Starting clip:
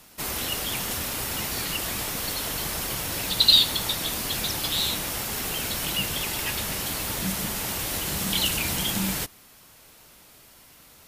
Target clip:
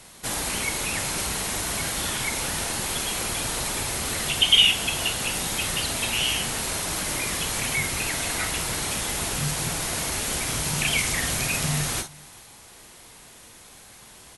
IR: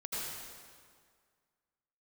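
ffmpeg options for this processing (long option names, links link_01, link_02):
-filter_complex "[0:a]asplit=2[link_01][link_02];[link_02]acompressor=threshold=-34dB:ratio=6,volume=-2dB[link_03];[link_01][link_03]amix=inputs=2:normalize=0,asetrate=33957,aresample=44100,aecho=1:1:404:0.0668[link_04];[1:a]atrim=start_sample=2205,atrim=end_sample=3528,asetrate=70560,aresample=44100[link_05];[link_04][link_05]afir=irnorm=-1:irlink=0,volume=8.5dB"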